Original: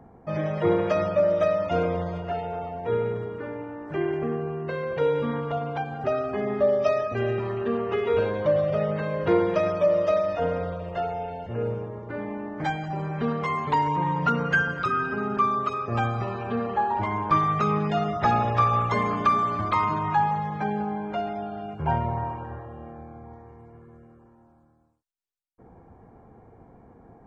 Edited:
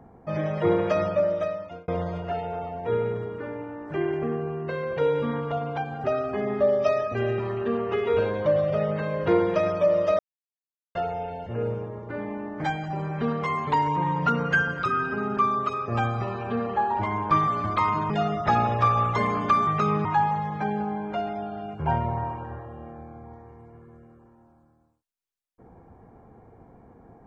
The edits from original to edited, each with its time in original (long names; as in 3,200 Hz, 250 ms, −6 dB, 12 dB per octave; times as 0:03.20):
0:01.07–0:01.88: fade out
0:10.19–0:10.95: silence
0:17.48–0:17.86: swap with 0:19.43–0:20.05